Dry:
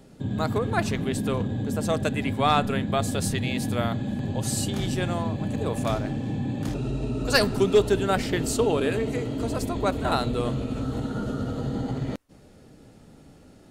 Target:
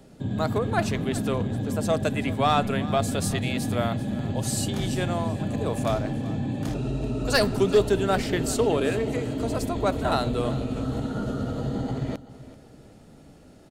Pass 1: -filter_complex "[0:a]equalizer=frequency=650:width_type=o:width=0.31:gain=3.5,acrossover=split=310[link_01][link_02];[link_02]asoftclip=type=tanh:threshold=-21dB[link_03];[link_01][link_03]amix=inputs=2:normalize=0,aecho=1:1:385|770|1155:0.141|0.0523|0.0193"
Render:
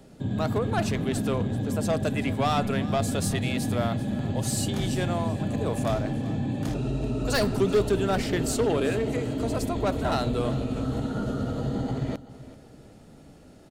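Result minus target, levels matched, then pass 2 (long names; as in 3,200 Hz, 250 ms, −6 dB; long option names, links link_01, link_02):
soft clipping: distortion +11 dB
-filter_complex "[0:a]equalizer=frequency=650:width_type=o:width=0.31:gain=3.5,acrossover=split=310[link_01][link_02];[link_02]asoftclip=type=tanh:threshold=-11.5dB[link_03];[link_01][link_03]amix=inputs=2:normalize=0,aecho=1:1:385|770|1155:0.141|0.0523|0.0193"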